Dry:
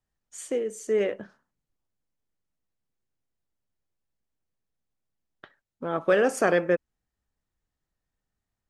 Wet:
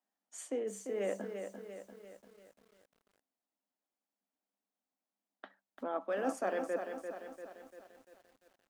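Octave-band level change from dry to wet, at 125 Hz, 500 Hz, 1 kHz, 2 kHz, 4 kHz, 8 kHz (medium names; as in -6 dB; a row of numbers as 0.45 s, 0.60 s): under -15 dB, -11.0 dB, -8.0 dB, -14.0 dB, -13.0 dB, -9.0 dB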